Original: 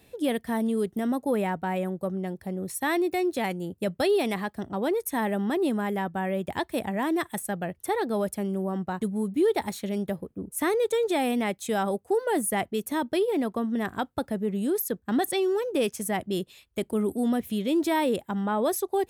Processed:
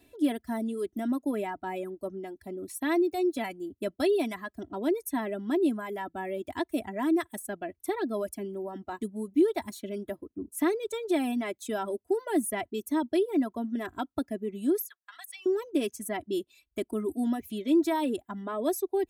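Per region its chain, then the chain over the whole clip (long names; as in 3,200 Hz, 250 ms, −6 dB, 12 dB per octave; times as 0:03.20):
0:14.86–0:15.46: high-pass filter 1,200 Hz 24 dB per octave + downward compressor 2 to 1, threshold −40 dBFS
whole clip: reverb reduction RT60 0.94 s; parametric band 280 Hz +5.5 dB 0.9 octaves; comb filter 3 ms, depth 70%; level −6.5 dB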